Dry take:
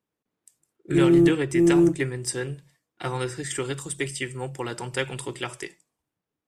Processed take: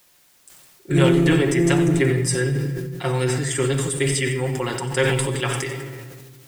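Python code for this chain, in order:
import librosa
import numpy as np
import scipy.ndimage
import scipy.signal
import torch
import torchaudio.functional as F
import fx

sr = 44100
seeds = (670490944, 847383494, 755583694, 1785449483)

p1 = x + 0.6 * np.pad(x, (int(7.4 * sr / 1000.0), 0))[:len(x)]
p2 = fx.quant_dither(p1, sr, seeds[0], bits=10, dither='triangular')
p3 = p2 + fx.echo_single(p2, sr, ms=90, db=-14.0, dry=0)
p4 = fx.room_shoebox(p3, sr, seeds[1], volume_m3=2700.0, walls='mixed', distance_m=0.92)
p5 = fx.sustainer(p4, sr, db_per_s=26.0)
y = p5 * librosa.db_to_amplitude(2.5)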